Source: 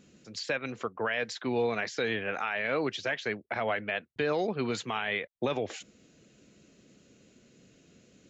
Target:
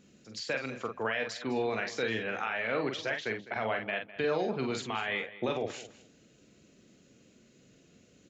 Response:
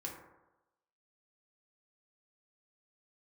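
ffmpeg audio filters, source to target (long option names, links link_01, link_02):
-filter_complex "[0:a]asplit=2[link_01][link_02];[link_02]adelay=45,volume=-5.5dB[link_03];[link_01][link_03]amix=inputs=2:normalize=0,asplit=2[link_04][link_05];[link_05]aecho=0:1:205|410:0.15|0.0254[link_06];[link_04][link_06]amix=inputs=2:normalize=0,volume=-2.5dB"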